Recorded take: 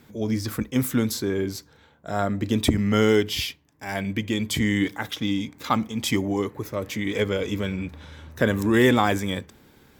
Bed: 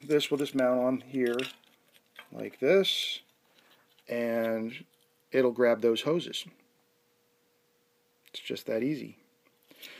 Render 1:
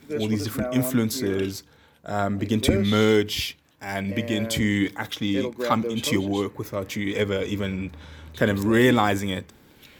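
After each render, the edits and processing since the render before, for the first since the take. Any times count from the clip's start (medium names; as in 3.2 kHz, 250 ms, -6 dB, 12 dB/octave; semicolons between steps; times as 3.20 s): add bed -4 dB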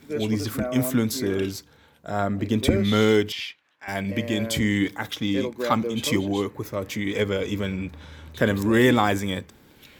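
2.10–2.77 s: peaking EQ 9.1 kHz -3.5 dB 2.5 oct; 3.32–3.88 s: band-pass filter 1.8 kHz, Q 0.97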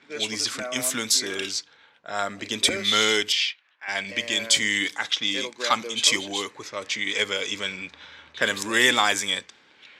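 level-controlled noise filter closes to 2 kHz, open at -20 dBFS; frequency weighting ITU-R 468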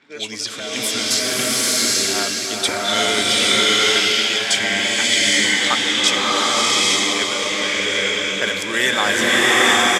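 feedback delay 526 ms, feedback 54%, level -11 dB; swelling reverb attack 830 ms, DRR -7 dB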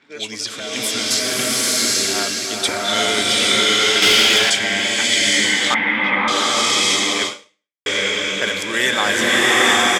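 4.02–4.50 s: waveshaping leveller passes 2; 5.74–6.28 s: cabinet simulation 120–2300 Hz, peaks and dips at 210 Hz +7 dB, 410 Hz -8 dB, 930 Hz +9 dB, 2.1 kHz +9 dB; 7.27–7.86 s: fade out exponential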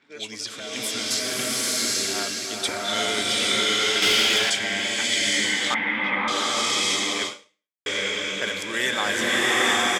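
trim -6.5 dB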